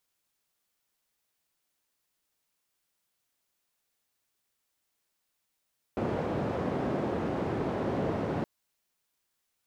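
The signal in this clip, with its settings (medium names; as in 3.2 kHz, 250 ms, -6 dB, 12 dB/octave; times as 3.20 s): noise band 100–500 Hz, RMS -31 dBFS 2.47 s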